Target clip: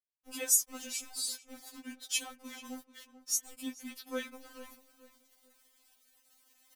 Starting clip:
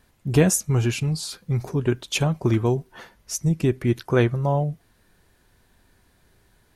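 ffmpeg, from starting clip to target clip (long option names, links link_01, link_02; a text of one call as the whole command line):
ffmpeg -i in.wav -filter_complex "[0:a]equalizer=frequency=320:width=0.88:gain=10,acrossover=split=180|3100[link_01][link_02][link_03];[link_01]acontrast=74[link_04];[link_04][link_02][link_03]amix=inputs=3:normalize=0,aderivative,areverse,acompressor=mode=upward:threshold=-37dB:ratio=2.5,areverse,aeval=exprs='val(0)*gte(abs(val(0)),0.00668)':channel_layout=same,asplit=2[link_05][link_06];[link_06]adelay=437,lowpass=frequency=2600:poles=1,volume=-14.5dB,asplit=2[link_07][link_08];[link_08]adelay=437,lowpass=frequency=2600:poles=1,volume=0.33,asplit=2[link_09][link_10];[link_10]adelay=437,lowpass=frequency=2600:poles=1,volume=0.33[link_11];[link_05][link_07][link_09][link_11]amix=inputs=4:normalize=0,afftfilt=real='re*3.46*eq(mod(b,12),0)':imag='im*3.46*eq(mod(b,12),0)':win_size=2048:overlap=0.75" out.wav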